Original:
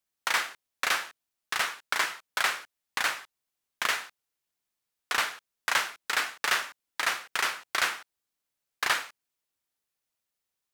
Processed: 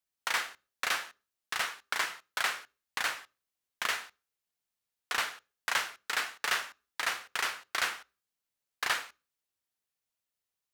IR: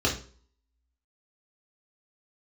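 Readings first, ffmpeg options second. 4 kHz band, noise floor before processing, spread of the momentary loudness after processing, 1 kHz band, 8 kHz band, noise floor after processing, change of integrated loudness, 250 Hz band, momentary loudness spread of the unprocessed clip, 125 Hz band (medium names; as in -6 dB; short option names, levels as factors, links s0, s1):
-3.5 dB, under -85 dBFS, 10 LU, -4.5 dB, -4.0 dB, under -85 dBFS, -4.0 dB, -4.5 dB, 10 LU, no reading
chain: -filter_complex "[0:a]asplit=2[s0][s1];[1:a]atrim=start_sample=2205,afade=t=out:st=0.31:d=0.01,atrim=end_sample=14112[s2];[s1][s2]afir=irnorm=-1:irlink=0,volume=0.0282[s3];[s0][s3]amix=inputs=2:normalize=0,volume=0.631"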